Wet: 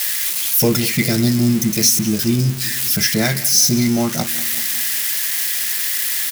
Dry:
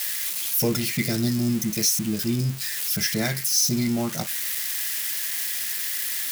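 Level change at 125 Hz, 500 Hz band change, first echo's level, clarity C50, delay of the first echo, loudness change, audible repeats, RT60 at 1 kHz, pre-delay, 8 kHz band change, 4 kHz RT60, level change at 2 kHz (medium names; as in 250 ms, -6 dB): +8.0 dB, +7.5 dB, -17.5 dB, no reverb, 190 ms, +7.5 dB, 4, no reverb, no reverb, +7.5 dB, no reverb, +7.5 dB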